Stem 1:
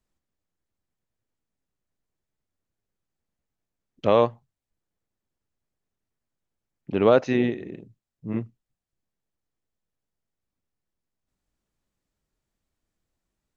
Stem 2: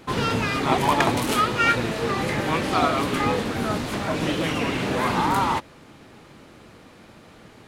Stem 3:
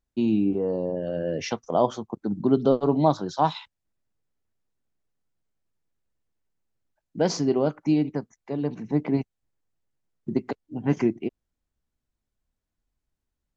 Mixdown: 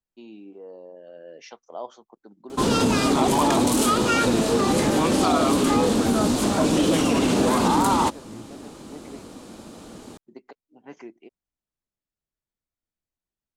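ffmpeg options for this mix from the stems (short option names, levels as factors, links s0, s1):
-filter_complex "[0:a]acompressor=threshold=0.1:ratio=6,alimiter=limit=0.178:level=0:latency=1:release=160,volume=0.224[s0];[1:a]equalizer=f=125:t=o:w=1:g=-7,equalizer=f=250:t=o:w=1:g=6,equalizer=f=2000:t=o:w=1:g=-10,equalizer=f=8000:t=o:w=1:g=8,acontrast=47,adelay=2500,volume=0.944[s1];[2:a]highpass=450,volume=0.251[s2];[s0][s1][s2]amix=inputs=3:normalize=0,alimiter=limit=0.266:level=0:latency=1:release=31"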